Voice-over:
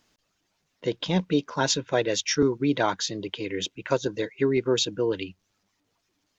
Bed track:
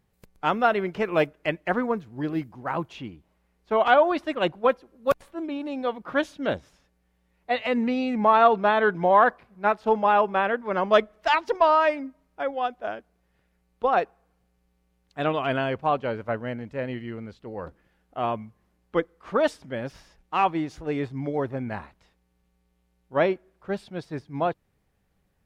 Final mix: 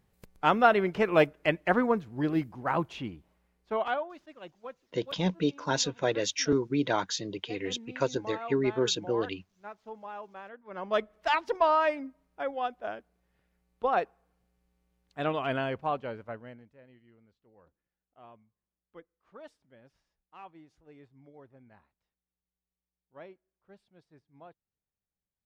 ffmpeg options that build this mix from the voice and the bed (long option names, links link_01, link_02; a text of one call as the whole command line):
ffmpeg -i stem1.wav -i stem2.wav -filter_complex "[0:a]adelay=4100,volume=-4dB[link_01];[1:a]volume=17dB,afade=type=out:start_time=3.15:duration=0.94:silence=0.0794328,afade=type=in:start_time=10.63:duration=0.6:silence=0.141254,afade=type=out:start_time=15.64:duration=1.13:silence=0.0891251[link_02];[link_01][link_02]amix=inputs=2:normalize=0" out.wav